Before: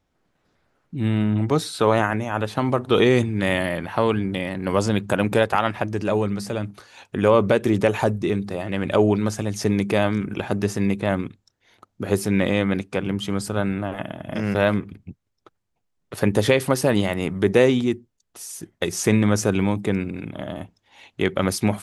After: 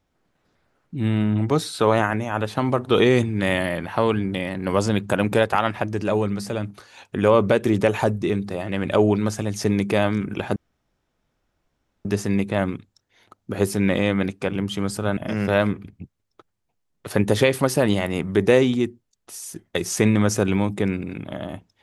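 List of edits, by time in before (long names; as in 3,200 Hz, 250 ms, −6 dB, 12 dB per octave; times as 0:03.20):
0:10.56: splice in room tone 1.49 s
0:13.68–0:14.24: remove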